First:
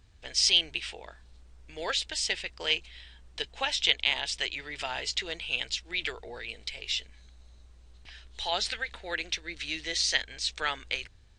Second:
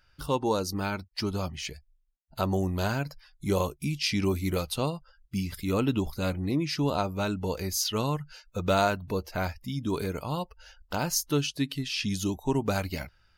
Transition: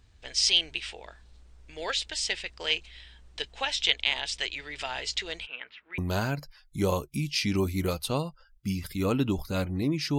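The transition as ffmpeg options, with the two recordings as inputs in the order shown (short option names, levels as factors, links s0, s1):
-filter_complex "[0:a]asplit=3[s0][s1][s2];[s0]afade=t=out:st=5.45:d=0.02[s3];[s1]highpass=340,equalizer=f=360:t=q:w=4:g=-8,equalizer=f=530:t=q:w=4:g=-6,equalizer=f=750:t=q:w=4:g=-9,equalizer=f=1300:t=q:w=4:g=4,lowpass=f=2100:w=0.5412,lowpass=f=2100:w=1.3066,afade=t=in:st=5.45:d=0.02,afade=t=out:st=5.98:d=0.02[s4];[s2]afade=t=in:st=5.98:d=0.02[s5];[s3][s4][s5]amix=inputs=3:normalize=0,apad=whole_dur=10.18,atrim=end=10.18,atrim=end=5.982[s6];[1:a]atrim=start=2.658:end=6.86[s7];[s6][s7]acrossfade=d=0.004:c1=hsin:c2=hsin"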